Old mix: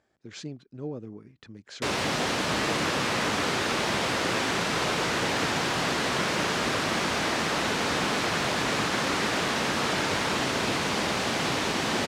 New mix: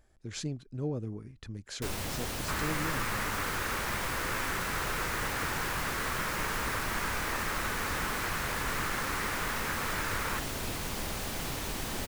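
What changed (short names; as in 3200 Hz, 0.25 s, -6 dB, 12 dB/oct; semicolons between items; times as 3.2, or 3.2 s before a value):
first sound -11.5 dB; master: remove BPF 170–5400 Hz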